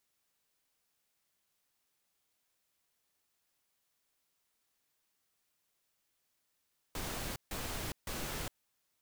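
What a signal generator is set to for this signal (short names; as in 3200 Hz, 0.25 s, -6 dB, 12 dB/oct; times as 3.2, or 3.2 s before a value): noise bursts pink, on 0.41 s, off 0.15 s, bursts 3, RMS -39.5 dBFS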